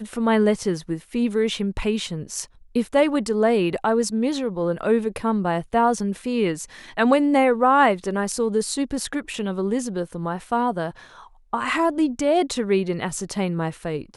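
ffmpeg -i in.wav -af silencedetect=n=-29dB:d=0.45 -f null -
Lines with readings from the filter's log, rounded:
silence_start: 10.91
silence_end: 11.53 | silence_duration: 0.62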